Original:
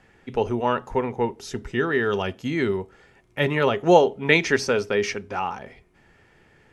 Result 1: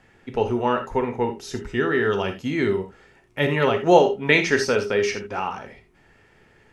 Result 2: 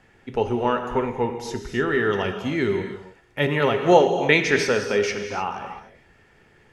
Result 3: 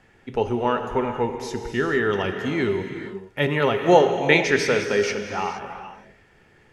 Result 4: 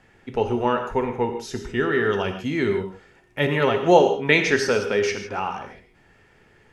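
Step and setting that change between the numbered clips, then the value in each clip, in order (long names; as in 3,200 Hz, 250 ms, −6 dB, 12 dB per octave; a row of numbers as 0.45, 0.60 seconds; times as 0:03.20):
reverb whose tail is shaped and stops, gate: 100, 330, 490, 180 milliseconds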